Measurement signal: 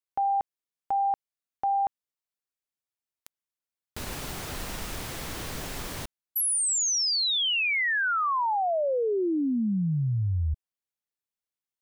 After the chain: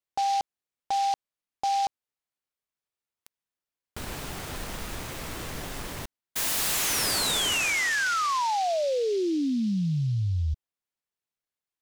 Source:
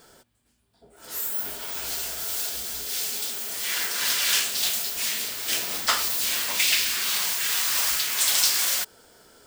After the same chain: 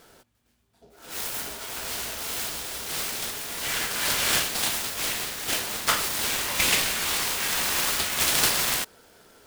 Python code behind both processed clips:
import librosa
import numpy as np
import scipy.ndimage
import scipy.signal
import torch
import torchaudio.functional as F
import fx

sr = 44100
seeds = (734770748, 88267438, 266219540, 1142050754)

y = fx.noise_mod_delay(x, sr, seeds[0], noise_hz=4000.0, depth_ms=0.038)